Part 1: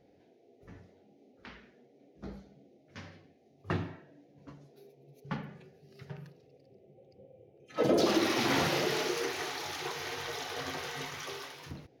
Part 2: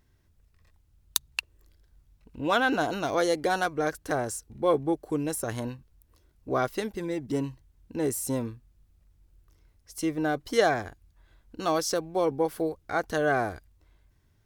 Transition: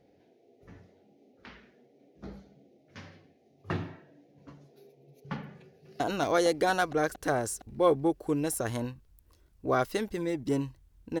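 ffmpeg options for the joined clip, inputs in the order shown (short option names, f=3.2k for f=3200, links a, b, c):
-filter_complex "[0:a]apad=whole_dur=11.2,atrim=end=11.2,atrim=end=6.002[a];[1:a]atrim=start=2.828:end=8.03[b];[a][b]acrossfade=d=0.004:c1=hsin:c2=hsin,asplit=2[c][d];[d]afade=t=in:st=5.62:d=0.01,afade=t=out:st=6:d=0.01,aecho=0:1:230|460|690|920|1150|1380|1610|1840|2070|2300|2530|2760:0.944061|0.755249|0.604199|0.483359|0.386687|0.30935|0.24748|0.197984|0.158387|0.12671|0.101368|0.0810942[e];[c][e]amix=inputs=2:normalize=0"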